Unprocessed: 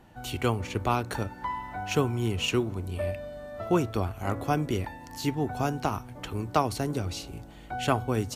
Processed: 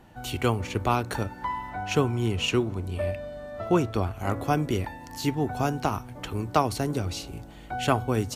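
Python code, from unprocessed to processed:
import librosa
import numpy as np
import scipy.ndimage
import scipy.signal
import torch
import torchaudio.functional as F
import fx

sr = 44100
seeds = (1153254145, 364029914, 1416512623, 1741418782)

y = fx.high_shelf(x, sr, hz=12000.0, db=-10.0, at=(1.7, 4.2))
y = F.gain(torch.from_numpy(y), 2.0).numpy()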